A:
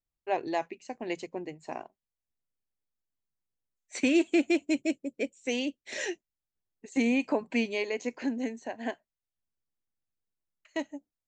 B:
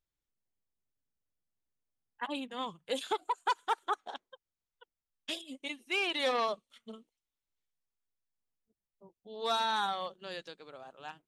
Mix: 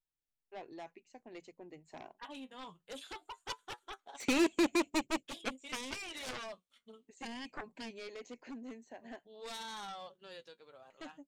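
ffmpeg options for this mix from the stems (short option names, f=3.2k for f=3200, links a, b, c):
-filter_complex "[0:a]adelay=250,volume=-0.5dB,afade=t=in:st=1.62:d=0.63:silence=0.334965,afade=t=out:st=5.57:d=0.66:silence=0.446684[a];[1:a]flanger=delay=6.3:depth=5.2:regen=51:speed=0.21:shape=sinusoidal,volume=0.5dB[b];[a][b]amix=inputs=2:normalize=0,aeval=exprs='0.188*(cos(1*acos(clip(val(0)/0.188,-1,1)))-cos(1*PI/2))+0.0422*(cos(7*acos(clip(val(0)/0.188,-1,1)))-cos(7*PI/2))':c=same,asoftclip=type=tanh:threshold=-22.5dB"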